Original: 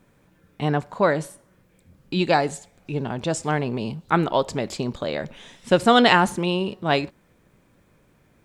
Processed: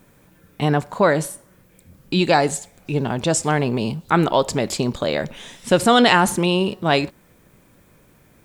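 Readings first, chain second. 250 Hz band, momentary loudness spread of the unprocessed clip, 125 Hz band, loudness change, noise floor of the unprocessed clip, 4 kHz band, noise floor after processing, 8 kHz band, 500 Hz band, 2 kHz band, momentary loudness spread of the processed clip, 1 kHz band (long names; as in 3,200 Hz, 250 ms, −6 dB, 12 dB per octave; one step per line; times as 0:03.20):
+3.5 dB, 13 LU, +4.0 dB, +3.0 dB, −61 dBFS, +3.5 dB, −55 dBFS, +10.0 dB, +3.0 dB, +2.5 dB, 11 LU, +2.0 dB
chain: high-shelf EQ 8,700 Hz +11.5 dB
in parallel at +3 dB: brickwall limiter −13 dBFS, peak gain reduction 11.5 dB
on the sum: level −2.5 dB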